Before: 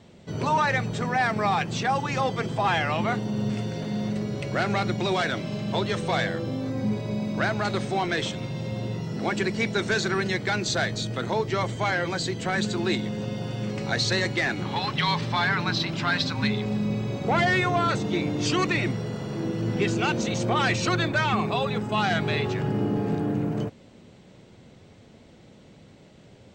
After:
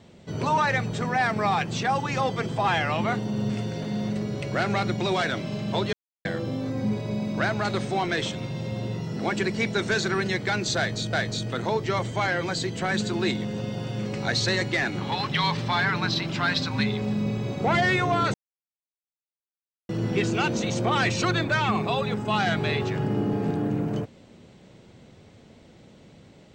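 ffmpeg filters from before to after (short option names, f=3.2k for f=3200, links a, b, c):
-filter_complex "[0:a]asplit=6[a][b][c][d][e][f];[a]atrim=end=5.93,asetpts=PTS-STARTPTS,afade=t=out:st=5.926:d=0.004:c=hsin[g];[b]atrim=start=5.93:end=6.25,asetpts=PTS-STARTPTS,volume=0[h];[c]atrim=start=6.25:end=11.132,asetpts=PTS-STARTPTS,afade=t=in:d=0.004:c=hsin[i];[d]atrim=start=10.768:end=17.98,asetpts=PTS-STARTPTS,afade=t=out:st=7.208:d=0.004:c=hsin[j];[e]atrim=start=17.98:end=19.53,asetpts=PTS-STARTPTS,volume=0[k];[f]atrim=start=19.53,asetpts=PTS-STARTPTS,afade=t=in:d=0.004:c=hsin[l];[g][h][i]concat=n=3:v=0:a=1[m];[j][k][l]concat=n=3:v=0:a=1[n];[m][n]acrossfade=d=0.004:c1=hsin:c2=hsin"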